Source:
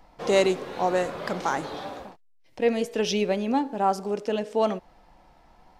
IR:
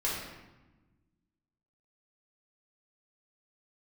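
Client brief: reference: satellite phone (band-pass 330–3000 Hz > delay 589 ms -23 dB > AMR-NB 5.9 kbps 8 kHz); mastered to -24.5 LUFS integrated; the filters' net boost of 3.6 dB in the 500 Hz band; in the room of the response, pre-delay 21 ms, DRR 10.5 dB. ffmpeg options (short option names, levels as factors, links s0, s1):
-filter_complex "[0:a]equalizer=f=500:t=o:g=5.5,asplit=2[s0][s1];[1:a]atrim=start_sample=2205,adelay=21[s2];[s1][s2]afir=irnorm=-1:irlink=0,volume=0.133[s3];[s0][s3]amix=inputs=2:normalize=0,highpass=330,lowpass=3000,aecho=1:1:589:0.0708" -ar 8000 -c:a libopencore_amrnb -b:a 5900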